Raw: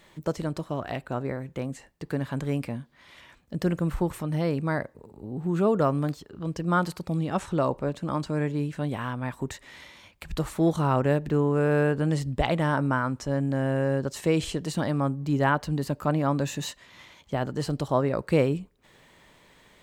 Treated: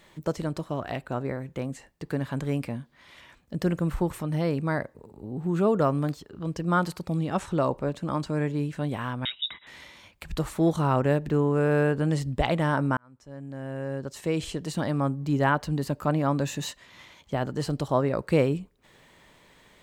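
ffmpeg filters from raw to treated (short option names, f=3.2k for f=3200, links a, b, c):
-filter_complex "[0:a]asettb=1/sr,asplit=3[a][b][c];[a]atrim=end=9.254[d];[b]atrim=start=9.25:end=9.67,asetpts=PTS-STARTPTS,afade=t=in:d=0.004:c=qsin,afade=t=out:st=0.416:d=0.004:c=qsin,lowpass=f=3.3k:t=q:w=0.5098,lowpass=f=3.3k:t=q:w=0.6013,lowpass=f=3.3k:t=q:w=0.9,lowpass=f=3.3k:t=q:w=2.563,afreqshift=-3900[e];[c]atrim=start=9.666[f];[d][e]acrossfade=d=0.004:c1=hsin:c2=qsin[g];[g][f]acrossfade=d=0.004:c1=qsin:c2=hsin,asplit=2[h][i];[h]atrim=end=12.97,asetpts=PTS-STARTPTS,afade=t=out:st=12.966:d=0.004:c=hsin[j];[i]atrim=start=12.97,asetpts=PTS-STARTPTS,afade=t=in:d=2.07[k];[j][k]concat=n=2:v=0:a=1"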